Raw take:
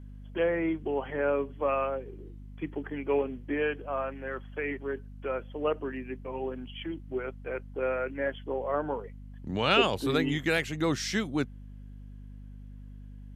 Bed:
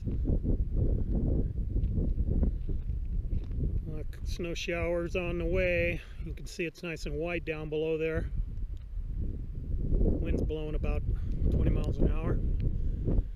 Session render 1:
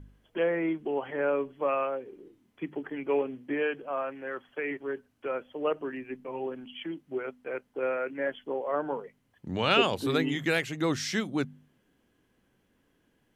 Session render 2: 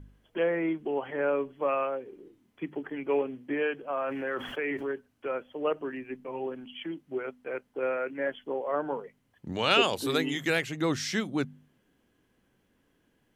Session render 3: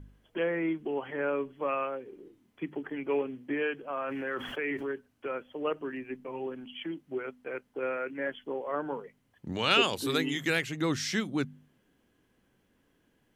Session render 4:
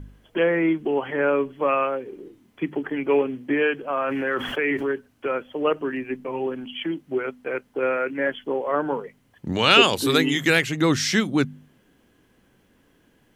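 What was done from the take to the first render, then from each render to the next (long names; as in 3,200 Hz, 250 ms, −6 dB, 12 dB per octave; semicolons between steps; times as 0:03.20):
hum removal 50 Hz, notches 5
0:03.89–0:04.92: envelope flattener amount 70%; 0:09.52–0:10.50: bass and treble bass −5 dB, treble +7 dB
dynamic equaliser 650 Hz, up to −5 dB, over −41 dBFS, Q 1.3
level +9.5 dB; brickwall limiter −1 dBFS, peak gain reduction 1.5 dB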